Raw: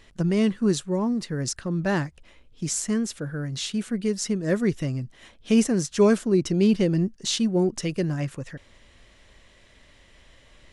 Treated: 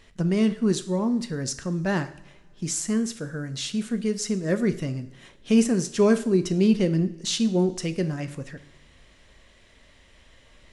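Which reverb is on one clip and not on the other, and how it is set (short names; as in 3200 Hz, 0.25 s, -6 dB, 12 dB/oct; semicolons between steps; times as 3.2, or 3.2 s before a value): two-slope reverb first 0.58 s, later 2.3 s, from -20 dB, DRR 9.5 dB; gain -1 dB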